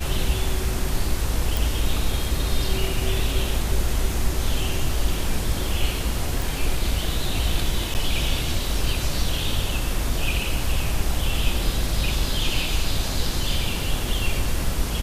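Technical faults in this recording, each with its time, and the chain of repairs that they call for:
1.57 pop
6.42 pop
7.94–7.95 gap 9.3 ms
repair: de-click; interpolate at 7.94, 9.3 ms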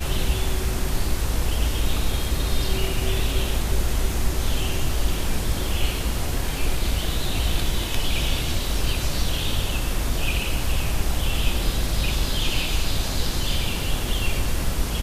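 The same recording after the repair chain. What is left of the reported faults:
none

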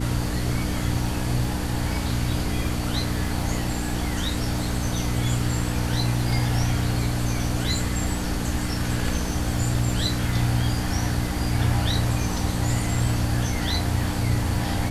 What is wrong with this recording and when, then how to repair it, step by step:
crackle 25/s -33 dBFS
hum 60 Hz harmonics 5 -28 dBFS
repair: de-click; de-hum 60 Hz, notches 5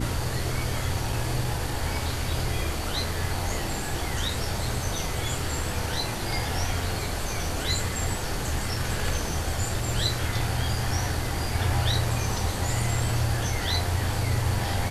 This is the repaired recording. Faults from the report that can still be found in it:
none

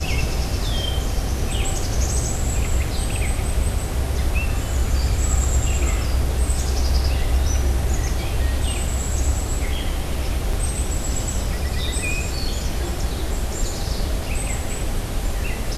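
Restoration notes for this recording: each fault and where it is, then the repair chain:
10.53 gap 3.9 ms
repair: interpolate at 10.53, 3.9 ms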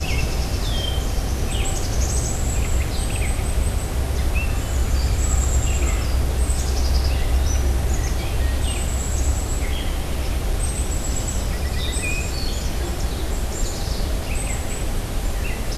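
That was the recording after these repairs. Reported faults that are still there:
none

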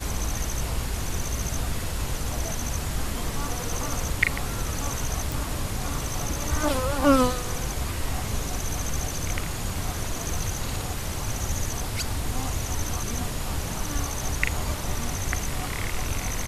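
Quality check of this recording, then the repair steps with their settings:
5.32 pop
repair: de-click

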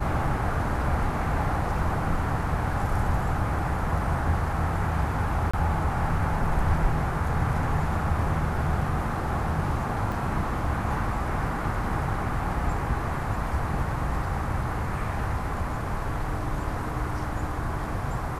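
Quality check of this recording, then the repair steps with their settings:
5.51–5.54 gap 25 ms
10.12 gap 2.8 ms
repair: interpolate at 5.51, 25 ms; interpolate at 10.12, 2.8 ms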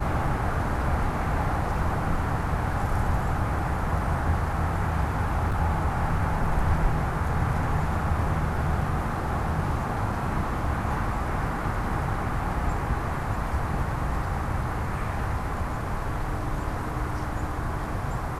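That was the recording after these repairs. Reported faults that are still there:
none

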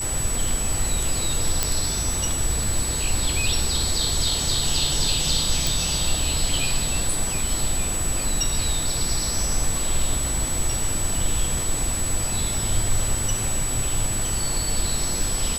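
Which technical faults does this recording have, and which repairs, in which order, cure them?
crackle 55/s -28 dBFS
tone 7900 Hz -26 dBFS
1.63 pop -3 dBFS
5.67 pop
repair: de-click; notch 7900 Hz, Q 30

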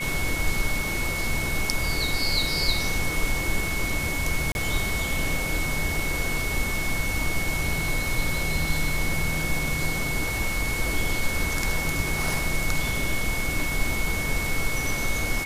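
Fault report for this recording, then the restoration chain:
tone 2200 Hz -29 dBFS
4.52–4.55 gap 31 ms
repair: notch 2200 Hz, Q 30; interpolate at 4.52, 31 ms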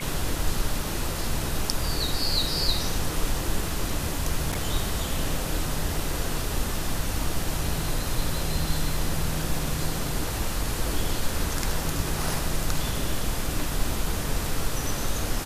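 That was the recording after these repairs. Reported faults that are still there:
none

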